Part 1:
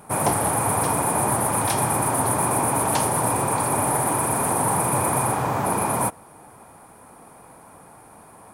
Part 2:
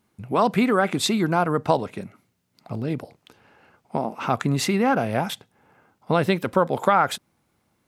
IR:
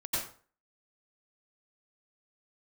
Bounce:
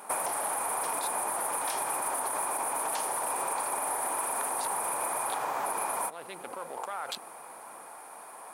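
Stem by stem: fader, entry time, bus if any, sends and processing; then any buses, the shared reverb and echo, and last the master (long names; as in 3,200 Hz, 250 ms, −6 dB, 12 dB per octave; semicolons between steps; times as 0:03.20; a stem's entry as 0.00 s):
+2.5 dB, 0.00 s, no send, brickwall limiter −14 dBFS, peak gain reduction 6 dB
−19.5 dB, 0.00 s, no send, adaptive Wiener filter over 25 samples; envelope flattener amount 100%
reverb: not used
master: high-pass filter 600 Hz 12 dB per octave; downward compressor 6 to 1, threshold −29 dBFS, peak gain reduction 10.5 dB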